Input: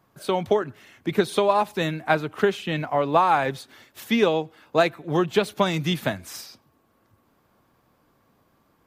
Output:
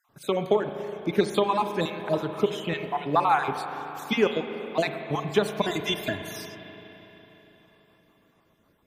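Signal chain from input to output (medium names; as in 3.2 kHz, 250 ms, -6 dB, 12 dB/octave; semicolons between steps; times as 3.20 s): random holes in the spectrogram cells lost 39%; 5.63–6.32 s: comb 2.9 ms, depth 69%; spring tank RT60 4 s, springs 34/41 ms, chirp 60 ms, DRR 7 dB; trim -1.5 dB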